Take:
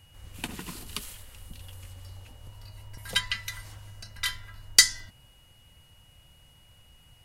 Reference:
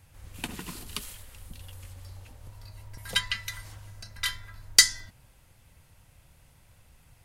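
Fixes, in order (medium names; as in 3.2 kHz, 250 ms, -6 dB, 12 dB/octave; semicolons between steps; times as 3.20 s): band-stop 2.9 kHz, Q 30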